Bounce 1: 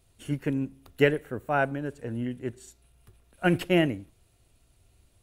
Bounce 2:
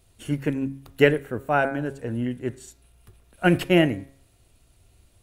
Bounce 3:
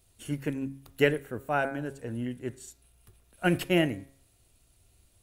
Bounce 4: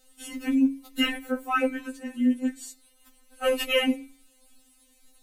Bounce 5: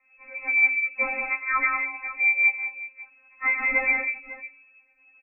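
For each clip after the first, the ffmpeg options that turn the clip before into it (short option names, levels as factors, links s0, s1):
-af "bandreject=f=136.7:t=h:w=4,bandreject=f=273.4:t=h:w=4,bandreject=f=410.1:t=h:w=4,bandreject=f=546.8:t=h:w=4,bandreject=f=683.5:t=h:w=4,bandreject=f=820.2:t=h:w=4,bandreject=f=956.9:t=h:w=4,bandreject=f=1093.6:t=h:w=4,bandreject=f=1230.3:t=h:w=4,bandreject=f=1367:t=h:w=4,bandreject=f=1503.7:t=h:w=4,bandreject=f=1640.4:t=h:w=4,bandreject=f=1777.1:t=h:w=4,bandreject=f=1913.8:t=h:w=4,bandreject=f=2050.5:t=h:w=4,bandreject=f=2187.2:t=h:w=4,bandreject=f=2323.9:t=h:w=4,bandreject=f=2460.6:t=h:w=4,volume=1.68"
-af "highshelf=f=4600:g=7,volume=0.473"
-af "afftfilt=real='re*3.46*eq(mod(b,12),0)':imag='im*3.46*eq(mod(b,12),0)':win_size=2048:overlap=0.75,volume=2.66"
-af "lowpass=f=2200:t=q:w=0.5098,lowpass=f=2200:t=q:w=0.6013,lowpass=f=2200:t=q:w=0.9,lowpass=f=2200:t=q:w=2.563,afreqshift=-2600,aecho=1:1:106|149|186|230|550:0.282|0.422|0.531|0.141|0.168"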